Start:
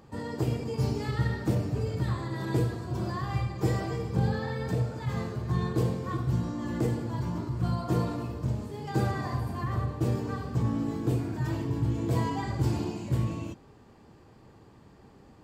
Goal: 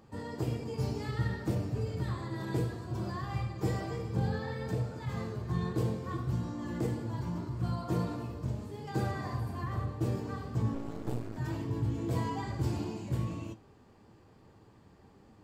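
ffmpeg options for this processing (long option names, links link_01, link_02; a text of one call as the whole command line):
ffmpeg -i in.wav -filter_complex "[0:a]flanger=delay=9:depth=2.8:regen=76:speed=1.7:shape=sinusoidal,asettb=1/sr,asplit=3[link_01][link_02][link_03];[link_01]atrim=end=10.744[link_04];[link_02]atrim=start=10.74:end=11.37,asetpts=PTS-STARTPTS,afade=type=in:duration=0.004:curve=qsin,afade=type=out:start_time=0.626:duration=0.004:curve=qsin,aeval=exprs='max(val(0),0)':channel_layout=same[link_05];[link_03]atrim=start=11.366[link_06];[link_04][link_05]acrossfade=duration=0.004:curve1=hsin:curve2=qsin[link_07];[link_07][link_06]acrossfade=duration=0.004:curve1=qsin:curve2=hsin" out.wav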